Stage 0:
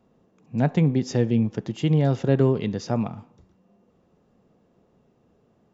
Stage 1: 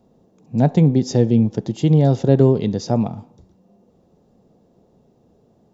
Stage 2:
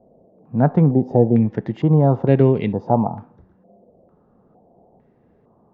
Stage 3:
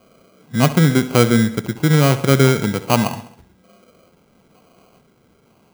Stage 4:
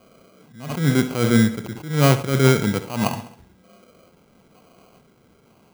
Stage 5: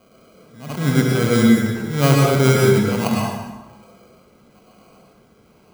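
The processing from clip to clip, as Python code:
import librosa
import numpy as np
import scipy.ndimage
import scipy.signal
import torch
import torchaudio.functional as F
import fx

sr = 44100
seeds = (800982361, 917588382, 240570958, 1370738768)

y1 = fx.band_shelf(x, sr, hz=1800.0, db=-8.5, octaves=1.7)
y1 = y1 * 10.0 ** (6.0 / 20.0)
y2 = fx.filter_held_lowpass(y1, sr, hz=2.2, low_hz=630.0, high_hz=2300.0)
y2 = y2 * 10.0 ** (-1.0 / 20.0)
y3 = fx.sample_hold(y2, sr, seeds[0], rate_hz=1800.0, jitter_pct=0)
y3 = fx.echo_feedback(y3, sr, ms=67, feedback_pct=54, wet_db=-15.5)
y3 = y3 * 10.0 ** (1.0 / 20.0)
y4 = fx.attack_slew(y3, sr, db_per_s=110.0)
y5 = fx.rev_plate(y4, sr, seeds[1], rt60_s=1.2, hf_ratio=0.7, predelay_ms=90, drr_db=-1.5)
y5 = y5 * 10.0 ** (-1.0 / 20.0)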